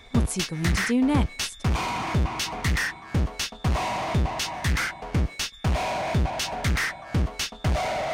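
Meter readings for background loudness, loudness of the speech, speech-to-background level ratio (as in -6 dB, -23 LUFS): -27.0 LUFS, -27.0 LUFS, 0.0 dB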